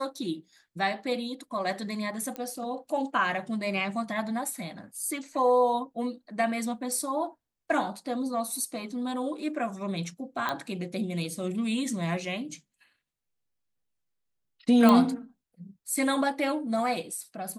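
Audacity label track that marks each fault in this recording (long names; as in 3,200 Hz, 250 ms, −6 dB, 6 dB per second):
2.360000	2.360000	click −21 dBFS
10.490000	10.490000	click −16 dBFS
14.890000	14.890000	click −10 dBFS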